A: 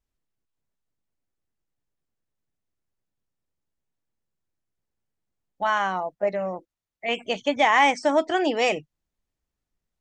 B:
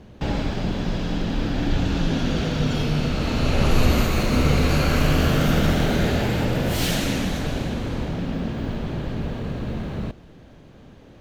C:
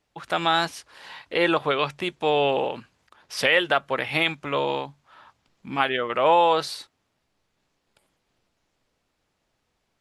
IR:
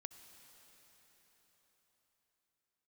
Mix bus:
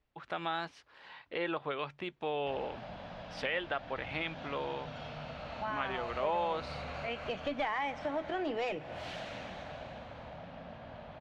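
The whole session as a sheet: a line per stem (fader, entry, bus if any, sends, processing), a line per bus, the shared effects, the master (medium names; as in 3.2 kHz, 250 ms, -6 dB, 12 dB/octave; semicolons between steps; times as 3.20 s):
+2.0 dB, 0.00 s, bus A, send -14.5 dB, auto duck -14 dB, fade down 0.30 s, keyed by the third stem
-14.5 dB, 2.25 s, bus A, no send, high-pass 51 Hz; resonant low shelf 490 Hz -8.5 dB, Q 3
-9.0 dB, 0.00 s, no bus, no send, none
bus A: 0.0 dB, one-sided clip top -22 dBFS; compression 2.5:1, threshold -35 dBFS, peak gain reduction 13 dB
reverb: on, pre-delay 58 ms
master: low-pass 3.3 kHz 12 dB/octave; compression 1.5:1, threshold -39 dBFS, peak gain reduction 6 dB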